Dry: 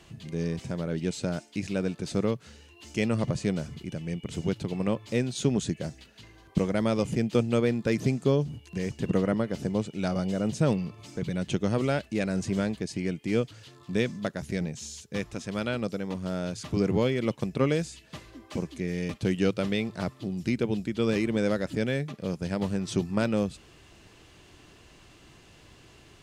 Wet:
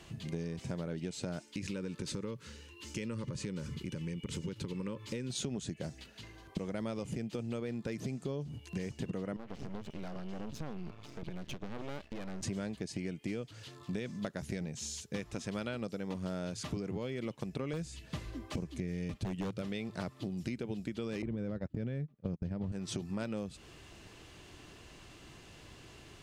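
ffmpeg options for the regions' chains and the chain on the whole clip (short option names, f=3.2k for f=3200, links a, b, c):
-filter_complex "[0:a]asettb=1/sr,asplit=3[a][b][c];[a]atrim=end=1.424[d];[b]atrim=start=1.42:end=5.3,asetpts=PTS-STARTPTS,afade=t=in:d=0.004:c=qsin,afade=t=out:st=3.876:d=0.004:c=qsin,acompressor=threshold=-32dB:ratio=4:attack=3.2:release=140:knee=1:detection=peak,asuperstop=centerf=710:order=8:qfactor=2.5[e];[c]atrim=start=5.296[f];[d][e]acrossfade=d=0.004:c1=hsin:c2=qsin[g];[g][f]acrossfade=d=0.004:c1=qsin:c2=hsin,asettb=1/sr,asplit=3[h][i][j];[h]atrim=end=9.364[k];[i]atrim=start=9.36:end=12.43,asetpts=PTS-STARTPTS,afade=t=in:d=0.004:c=qsin,afade=t=out:st=3.066:d=0.004:c=qsin,lowpass=4.5k,acompressor=threshold=-33dB:ratio=4:attack=3.2:release=140:knee=1:detection=peak,aeval=exprs='max(val(0),0)':c=same[l];[j]atrim=start=12.426[m];[k][l]acrossfade=d=0.004:c1=hsin:c2=qsin[n];[n][m]acrossfade=d=0.004:c1=qsin:c2=hsin,asettb=1/sr,asplit=3[o][p][q];[o]atrim=end=17.734[r];[p]atrim=start=17.73:end=19.62,asetpts=PTS-STARTPTS,afade=t=in:d=0.004:c=qsin,afade=t=out:st=1.886:d=0.004:c=qsin,lowshelf=f=160:g=11.5,aeval=exprs='0.158*(abs(mod(val(0)/0.158+3,4)-2)-1)':c=same[s];[q]atrim=start=19.616[t];[r][s]acrossfade=d=0.004:c1=hsin:c2=qsin[u];[u][t]acrossfade=d=0.004:c1=qsin:c2=hsin,asettb=1/sr,asplit=3[v][w][x];[v]atrim=end=21.224[y];[w]atrim=start=21.22:end=22.72,asetpts=PTS-STARTPTS,afade=t=in:d=0.004:c=qsin,afade=t=out:st=1.496:d=0.004:c=qsin,aemphasis=mode=reproduction:type=riaa,agate=range=-29dB:threshold=-24dB:ratio=16:release=100:detection=peak[z];[x]atrim=start=22.716[aa];[y][z]acrossfade=d=0.004:c1=hsin:c2=qsin[ab];[ab][aa]acrossfade=d=0.004:c1=qsin:c2=hsin,alimiter=limit=-18dB:level=0:latency=1:release=64,acompressor=threshold=-34dB:ratio=10"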